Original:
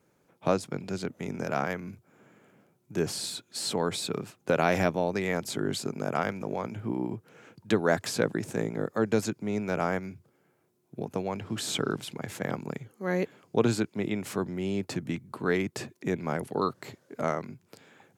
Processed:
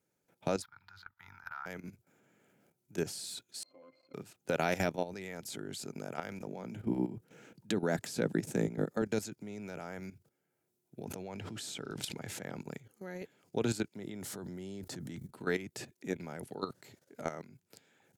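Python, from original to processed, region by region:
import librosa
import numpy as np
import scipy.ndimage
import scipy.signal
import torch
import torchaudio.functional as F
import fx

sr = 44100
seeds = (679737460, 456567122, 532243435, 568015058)

y = fx.chain(x, sr, fx.curve_eq(hz=(100.0, 150.0, 340.0, 550.0, 910.0, 1400.0, 2600.0, 4100.0, 8600.0, 13000.0), db=(0, -19, -24, -28, 8, 14, -5, 1, -25, 0)),
    fx.level_steps(step_db=16), at=(0.62, 1.66))
y = fx.chain(y, sr, fx.median_filter(points=25),
    fx.highpass(hz=560.0, slope=12),
    fx.octave_resonator(note='C', decay_s=0.11), at=(3.63, 4.14))
y = fx.chain(y, sr, fx.highpass(hz=130.0, slope=24),
    fx.low_shelf(hz=320.0, db=9.5), at=(6.47, 9.02))
y = fx.chain(y, sr, fx.high_shelf(hz=10000.0, db=-7.5),
    fx.sustainer(db_per_s=28.0), at=(11.05, 12.62))
y = fx.chain(y, sr, fx.peak_eq(hz=2500.0, db=-10.5, octaves=0.32),
    fx.env_flatten(amount_pct=50), at=(13.97, 15.28))
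y = fx.high_shelf(y, sr, hz=3800.0, db=8.5)
y = fx.notch(y, sr, hz=1100.0, q=5.9)
y = fx.level_steps(y, sr, step_db=13)
y = F.gain(torch.from_numpy(y), -4.0).numpy()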